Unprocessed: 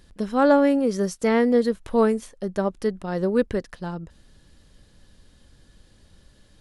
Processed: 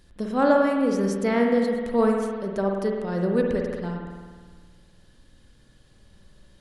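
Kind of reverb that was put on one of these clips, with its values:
spring reverb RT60 1.6 s, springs 51 ms, chirp 75 ms, DRR 1 dB
level −3 dB

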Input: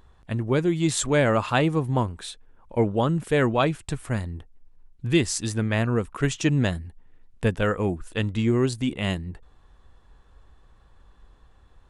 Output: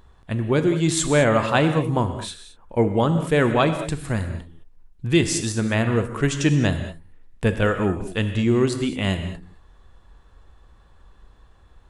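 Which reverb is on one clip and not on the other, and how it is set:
reverb whose tail is shaped and stops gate 240 ms flat, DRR 7.5 dB
level +2.5 dB

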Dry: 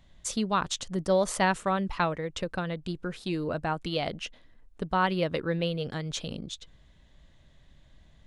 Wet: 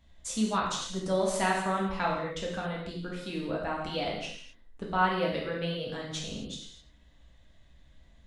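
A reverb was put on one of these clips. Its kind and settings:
reverb whose tail is shaped and stops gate 290 ms falling, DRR −4 dB
level −6.5 dB

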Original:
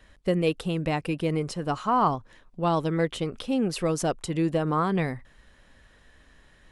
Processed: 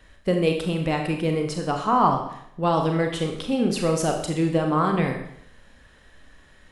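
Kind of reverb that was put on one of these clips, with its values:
four-comb reverb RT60 0.7 s, combs from 29 ms, DRR 3 dB
level +2 dB

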